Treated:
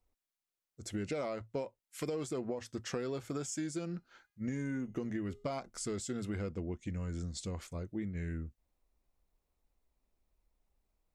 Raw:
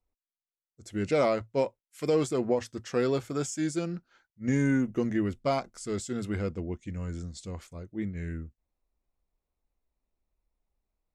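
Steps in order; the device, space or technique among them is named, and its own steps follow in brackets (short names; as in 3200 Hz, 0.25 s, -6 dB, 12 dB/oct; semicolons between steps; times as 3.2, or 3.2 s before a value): serial compression, leveller first (compressor 2:1, threshold -29 dBFS, peak gain reduction 5 dB; compressor 4:1, threshold -39 dBFS, peak gain reduction 12 dB); 3.85–5.5 de-hum 410.4 Hz, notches 34; gain +3 dB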